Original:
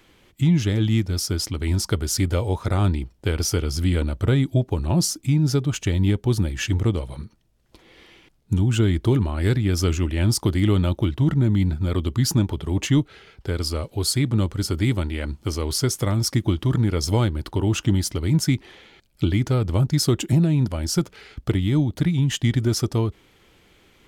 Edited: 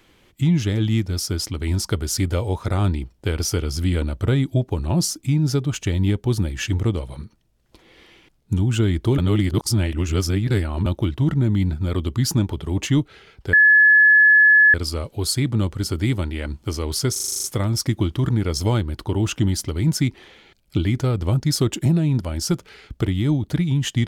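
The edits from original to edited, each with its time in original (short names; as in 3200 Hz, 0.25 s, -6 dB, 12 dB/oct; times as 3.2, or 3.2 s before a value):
9.18–10.86 reverse
13.53 add tone 1710 Hz -9 dBFS 1.21 s
15.91 stutter 0.04 s, 9 plays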